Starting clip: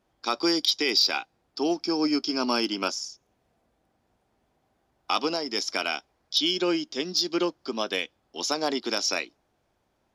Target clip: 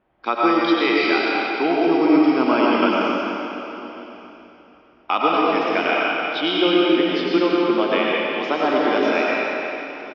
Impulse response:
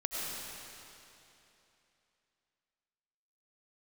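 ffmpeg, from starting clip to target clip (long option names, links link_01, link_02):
-filter_complex "[0:a]lowpass=frequency=2700:width=0.5412,lowpass=frequency=2700:width=1.3066,lowshelf=frequency=200:gain=-4,aecho=1:1:1147:0.075[link_01];[1:a]atrim=start_sample=2205[link_02];[link_01][link_02]afir=irnorm=-1:irlink=0,volume=7dB"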